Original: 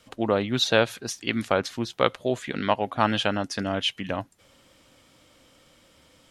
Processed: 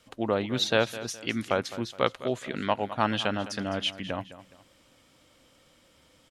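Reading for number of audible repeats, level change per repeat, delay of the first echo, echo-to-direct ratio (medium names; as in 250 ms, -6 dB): 2, -9.0 dB, 209 ms, -14.5 dB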